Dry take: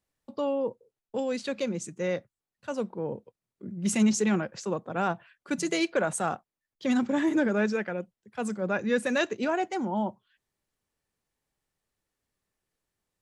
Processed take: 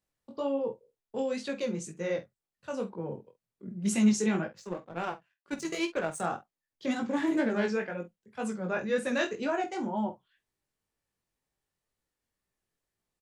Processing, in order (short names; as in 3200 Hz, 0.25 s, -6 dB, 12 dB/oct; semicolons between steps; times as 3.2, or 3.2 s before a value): 7.1–7.67 self-modulated delay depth 0.11 ms; chorus 2 Hz, delay 17.5 ms, depth 5.2 ms; 4.48–6.2 power-law curve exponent 1.4; doubler 47 ms -13 dB